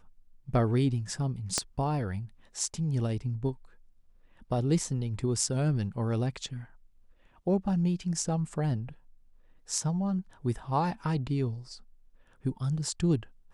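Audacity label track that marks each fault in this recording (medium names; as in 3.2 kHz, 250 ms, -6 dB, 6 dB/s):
1.580000	1.580000	pop -12 dBFS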